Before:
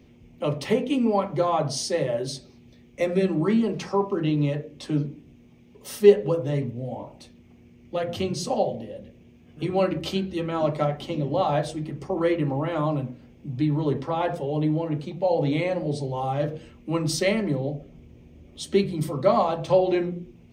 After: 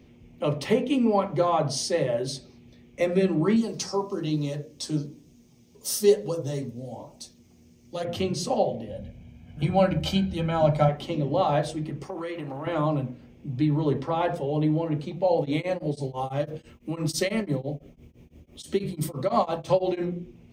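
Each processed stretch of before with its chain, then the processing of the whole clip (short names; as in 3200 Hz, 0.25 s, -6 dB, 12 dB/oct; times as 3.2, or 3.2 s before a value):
3.56–8.05 resonant high shelf 3700 Hz +12.5 dB, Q 1.5 + flange 1.1 Hz, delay 3.8 ms, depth 9.7 ms, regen +52%
8.88–10.89 low shelf 120 Hz +9 dB + comb 1.3 ms
12.03–12.67 tilt +2 dB/oct + compressor, threshold -29 dBFS + core saturation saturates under 330 Hz
15.38–20.05 high shelf 7300 Hz +9.5 dB + beating tremolo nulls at 6 Hz
whole clip: dry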